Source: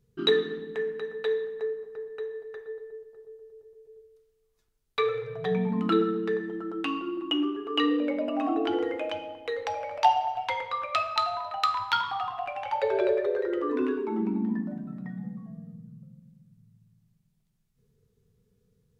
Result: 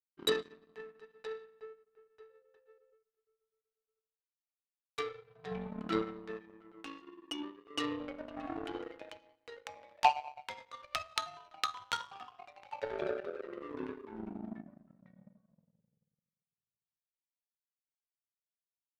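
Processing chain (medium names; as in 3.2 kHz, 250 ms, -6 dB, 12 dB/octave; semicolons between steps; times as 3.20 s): power-law waveshaper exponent 2; 2.29–2.93 s: whistle 520 Hz -69 dBFS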